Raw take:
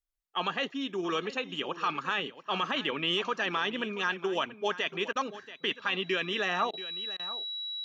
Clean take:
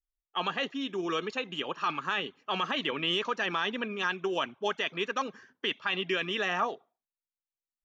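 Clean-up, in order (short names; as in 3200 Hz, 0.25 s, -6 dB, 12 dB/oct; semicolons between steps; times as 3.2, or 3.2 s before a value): notch 3900 Hz, Q 30; interpolate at 5.13/6.71/7.17, 23 ms; inverse comb 0.683 s -15 dB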